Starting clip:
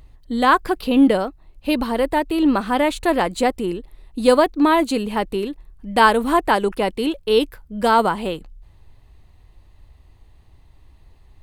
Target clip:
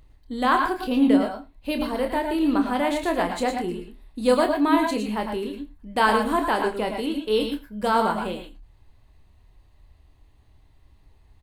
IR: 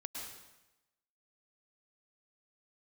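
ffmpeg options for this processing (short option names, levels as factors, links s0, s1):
-filter_complex "[0:a]asplit=2[s0][s1];[s1]adelay=28,volume=0.422[s2];[s0][s2]amix=inputs=2:normalize=0,aecho=1:1:47|87:0.112|0.106[s3];[1:a]atrim=start_sample=2205,afade=t=out:st=0.17:d=0.01,atrim=end_sample=7938[s4];[s3][s4]afir=irnorm=-1:irlink=0,volume=0.794"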